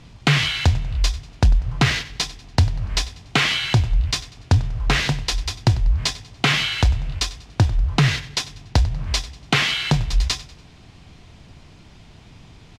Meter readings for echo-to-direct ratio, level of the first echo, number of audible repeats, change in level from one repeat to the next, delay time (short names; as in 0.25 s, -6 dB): -17.5 dB, -18.0 dB, 3, -8.0 dB, 96 ms